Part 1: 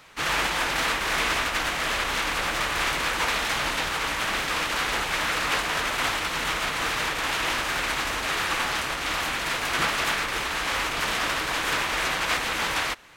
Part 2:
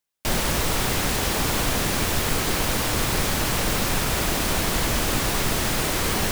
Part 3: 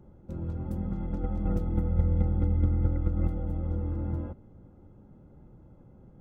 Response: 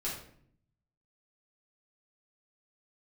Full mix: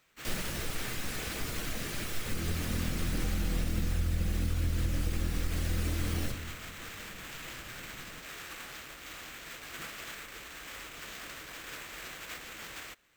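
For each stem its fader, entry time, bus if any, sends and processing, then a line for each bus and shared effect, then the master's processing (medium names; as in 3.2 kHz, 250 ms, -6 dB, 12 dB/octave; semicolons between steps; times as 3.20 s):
-16.5 dB, 0.00 s, no send, sample-rate reducer 10 kHz
-14.5 dB, 0.00 s, send -4.5 dB, reverb removal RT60 1.9 s
-6.0 dB, 2.00 s, send -3 dB, none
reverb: on, RT60 0.60 s, pre-delay 4 ms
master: peaking EQ 910 Hz -8 dB 0.82 oct; compression, threshold -26 dBFS, peak gain reduction 7.5 dB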